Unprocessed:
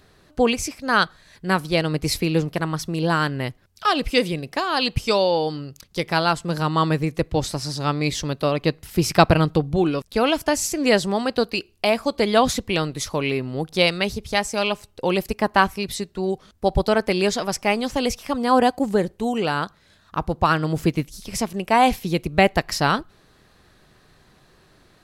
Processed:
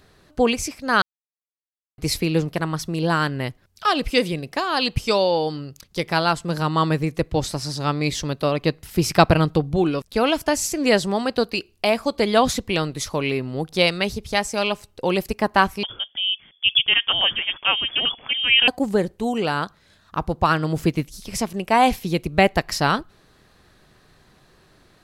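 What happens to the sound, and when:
0:01.02–0:01.98: silence
0:15.83–0:18.68: voice inversion scrambler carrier 3,400 Hz

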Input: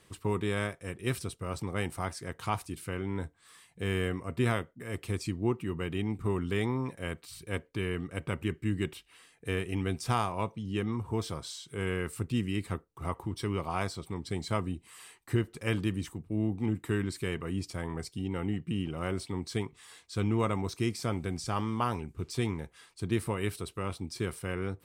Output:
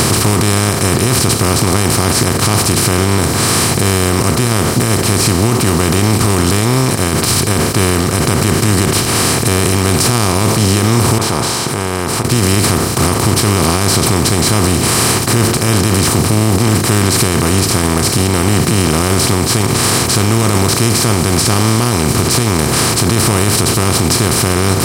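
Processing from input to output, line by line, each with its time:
0:11.18–0:12.25: resonant band-pass 880 Hz, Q 8.8
whole clip: compressor on every frequency bin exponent 0.2; bass and treble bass +6 dB, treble +14 dB; boost into a limiter +13.5 dB; level −1 dB

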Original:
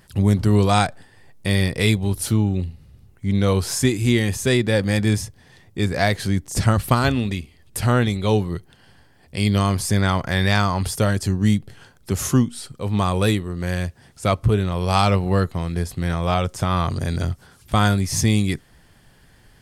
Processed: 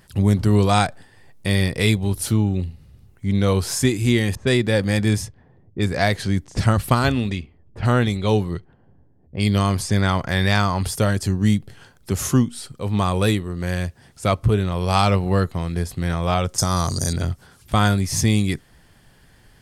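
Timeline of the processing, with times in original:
0:04.35–0:10.28: low-pass that shuts in the quiet parts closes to 360 Hz, open at −17.5 dBFS
0:16.58–0:17.13: high shelf with overshoot 4,000 Hz +13 dB, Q 3

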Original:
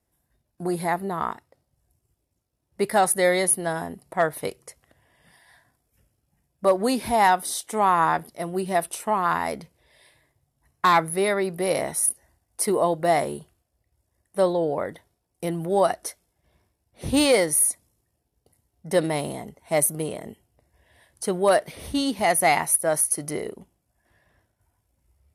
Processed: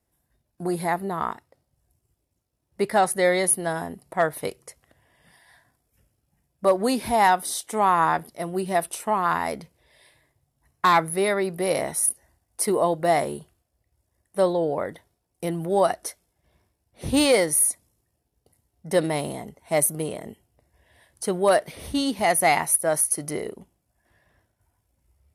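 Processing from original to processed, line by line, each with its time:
0:02.82–0:03.44: high-shelf EQ 10,000 Hz −11.5 dB

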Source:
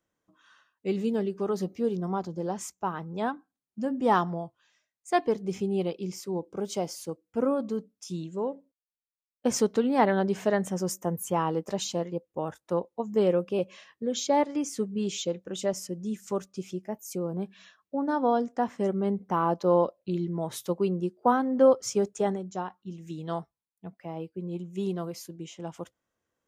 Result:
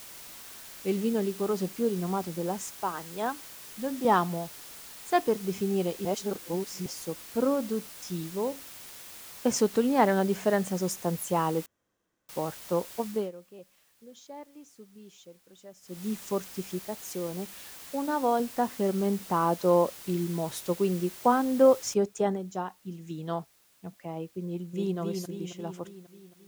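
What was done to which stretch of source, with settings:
0:02.75–0:04.05: Bessel high-pass filter 310 Hz
0:06.05–0:06.86: reverse
0:11.66–0:12.29: fill with room tone
0:13.05–0:16.08: duck −20.5 dB, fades 0.26 s
0:16.79–0:18.40: low-shelf EQ 230 Hz −8 dB
0:21.94: noise floor change −46 dB −64 dB
0:24.46–0:24.98: delay throw 270 ms, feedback 60%, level −4.5 dB

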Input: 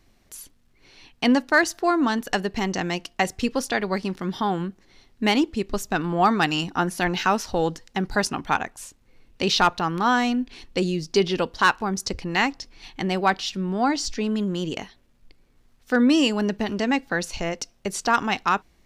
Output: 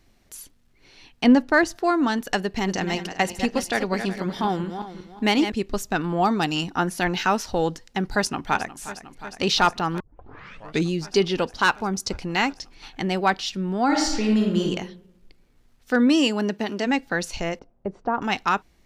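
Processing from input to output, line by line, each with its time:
0:01.24–0:01.76: spectral tilt −2 dB per octave
0:02.39–0:05.52: feedback delay that plays each chunk backwards 187 ms, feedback 49%, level −8.5 dB
0:06.05–0:06.56: dynamic equaliser 1,700 Hz, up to −7 dB, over −33 dBFS, Q 1.1
0:08.06–0:08.78: delay throw 360 ms, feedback 85%, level −14.5 dB
0:10.00: tape start 0.91 s
0:11.54–0:12.57: notch filter 1,800 Hz
0:13.85–0:14.63: thrown reverb, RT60 0.87 s, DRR −1 dB
0:16.06–0:16.85: high-pass filter 100 Hz → 240 Hz
0:17.59–0:18.22: Chebyshev low-pass filter 760 Hz
whole clip: notch filter 1,100 Hz, Q 23

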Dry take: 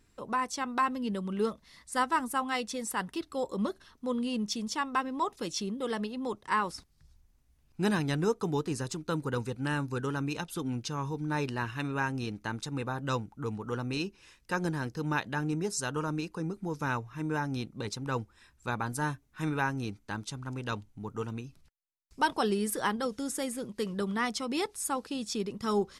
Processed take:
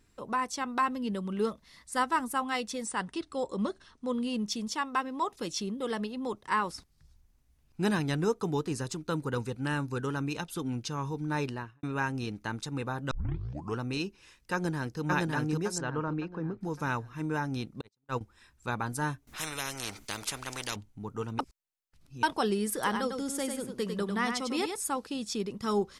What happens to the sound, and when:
0:02.86–0:04.14: linear-phase brick-wall low-pass 10,000 Hz
0:04.71–0:05.33: low-shelf EQ 150 Hz −7.5 dB
0:11.43–0:11.83: fade out and dull
0:13.11: tape start 0.67 s
0:14.53–0:15.01: delay throw 560 ms, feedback 40%, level −0.5 dB
0:15.78–0:16.61: low-pass filter 2,100 Hz
0:17.81–0:18.21: noise gate −32 dBFS, range −44 dB
0:19.27–0:20.76: every bin compressed towards the loudest bin 4 to 1
0:21.39–0:22.23: reverse
0:22.73–0:24.80: single-tap delay 99 ms −6 dB

